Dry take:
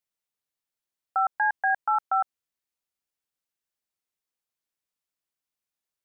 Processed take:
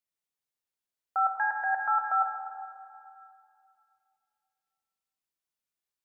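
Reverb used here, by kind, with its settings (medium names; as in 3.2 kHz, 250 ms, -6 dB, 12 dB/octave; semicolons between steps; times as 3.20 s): plate-style reverb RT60 2.5 s, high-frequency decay 0.9×, DRR 2.5 dB; trim -4.5 dB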